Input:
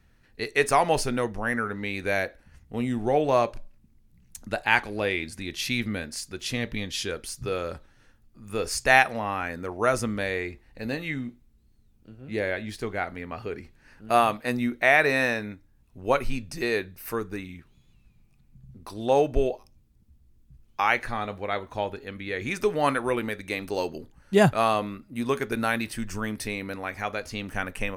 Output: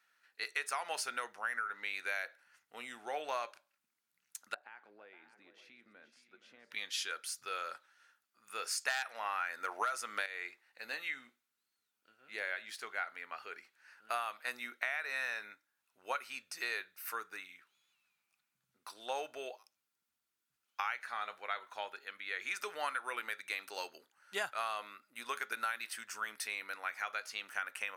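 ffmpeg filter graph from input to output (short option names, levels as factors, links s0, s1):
-filter_complex "[0:a]asettb=1/sr,asplit=3[s0][s1][s2];[s0]atrim=end=4.544[s3];[s1]atrim=start=4.54:end=6.71,asetpts=PTS-STARTPTS,afade=t=in:d=0.004:c=qsin,afade=t=out:st=2.166:d=0.004:c=qsin,acompressor=threshold=0.0316:ratio=4:attack=3.2:release=140:knee=1:detection=peak,bandpass=f=230:t=q:w=0.88,aecho=1:1:471|588:0.237|0.211,atrim=end_sample=95697[s4];[s2]atrim=start=6.706[s5];[s3][s4]acrossfade=d=0.004:c1=hsin:c2=qsin[s6];[s6][s5]acrossfade=d=0.004:c1=qsin:c2=hsin,asettb=1/sr,asplit=3[s7][s8][s9];[s7]atrim=end=8.884[s10];[s8]atrim=start=8.88:end=10.26,asetpts=PTS-STARTPTS,afade=t=in:d=0.004:c=qsin,afade=t=out:st=1.376:d=0.004:c=qsin,highpass=f=230:p=1,aeval=exprs='0.631*sin(PI/2*2.24*val(0)/0.631)':c=same[s11];[s9]atrim=start=10.256[s12];[s10][s11]acrossfade=d=0.004:c1=hsin:c2=qsin[s13];[s13][s12]acrossfade=d=0.004:c1=qsin:c2=hsin,highpass=1100,equalizer=f=1400:w=5.8:g=7.5,acompressor=threshold=0.0398:ratio=12,volume=0.596"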